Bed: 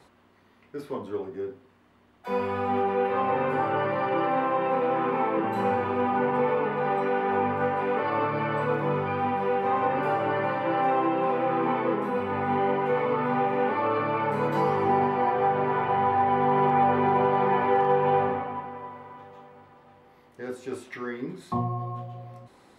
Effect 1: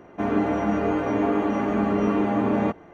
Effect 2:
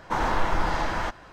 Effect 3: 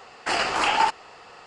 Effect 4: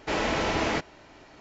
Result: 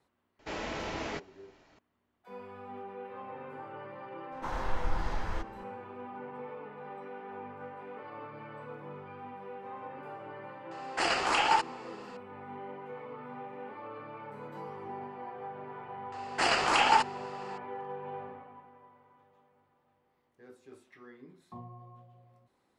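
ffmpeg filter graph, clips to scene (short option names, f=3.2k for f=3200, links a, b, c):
-filter_complex "[3:a]asplit=2[a][b];[0:a]volume=-18.5dB[c];[2:a]asubboost=boost=8:cutoff=170[d];[4:a]atrim=end=1.4,asetpts=PTS-STARTPTS,volume=-10.5dB,afade=t=in:d=0.004:c=hsin,afade=t=out:st=1.396:d=0.004:c=hsin,adelay=390[e];[d]atrim=end=1.32,asetpts=PTS-STARTPTS,volume=-12dB,afade=t=in:d=0.004:c=hsin,afade=t=out:st=1.316:d=0.004:c=hsin,adelay=4320[f];[a]atrim=end=1.46,asetpts=PTS-STARTPTS,volume=-5dB,afade=t=in:d=0.004:c=hsin,afade=t=out:st=1.456:d=0.004:c=hsin,adelay=10710[g];[b]atrim=end=1.46,asetpts=PTS-STARTPTS,volume=-3dB,afade=t=in:d=0.004:c=hsin,afade=t=out:st=1.456:d=0.004:c=hsin,adelay=16120[h];[c][e][f][g][h]amix=inputs=5:normalize=0"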